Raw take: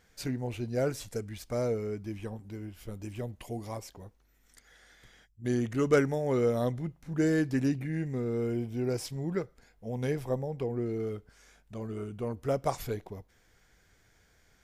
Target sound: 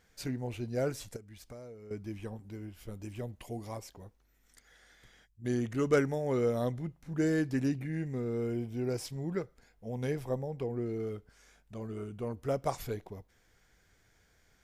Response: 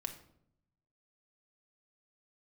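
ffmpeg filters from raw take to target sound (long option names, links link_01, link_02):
-filter_complex "[0:a]asettb=1/sr,asplit=3[link_01][link_02][link_03];[link_01]atrim=end=1.164[link_04];[link_02]atrim=start=1.16:end=1.91,asetpts=PTS-STARTPTS,afade=type=in:duration=0.004:curve=qsin,afade=type=out:start_time=0.746:duration=0.004:curve=qsin,acompressor=threshold=-45dB:ratio=5[link_05];[link_03]atrim=start=1.906[link_06];[link_04][link_05]acrossfade=duration=0.004:curve1=hsin:curve2=qsin[link_07];[link_07][link_06]acrossfade=duration=0.004:curve1=qsin:curve2=hsin,volume=-2.5dB"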